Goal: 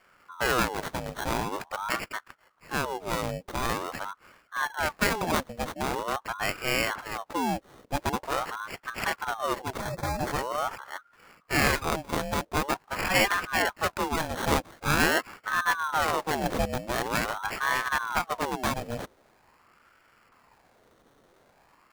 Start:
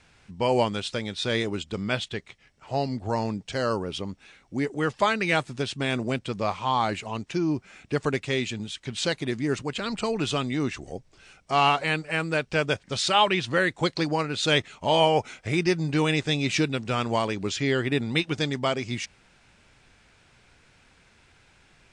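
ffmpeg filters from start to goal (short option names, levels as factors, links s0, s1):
-filter_complex "[0:a]acrusher=samples=18:mix=1:aa=0.000001,asettb=1/sr,asplit=3[s0][s1][s2];[s0]atrim=end=9.804[s3];[s1]atrim=start=9.8:end=10.77,asetpts=PTS-STARTPTS,afade=t=in:d=0.004:c=qsin,afade=t=out:st=0.966:d=0.004:c=qsin,asuperstop=centerf=2900:order=20:qfactor=2.5[s4];[s2]atrim=start=10.766[s5];[s3][s4]acrossfade=d=0.004:c1=hsin:c2=qsin[s6];[s6][s5]acrossfade=d=0.004:c1=qsin:c2=hsin,aeval=exprs='val(0)*sin(2*PI*880*n/s+880*0.6/0.45*sin(2*PI*0.45*n/s))':c=same"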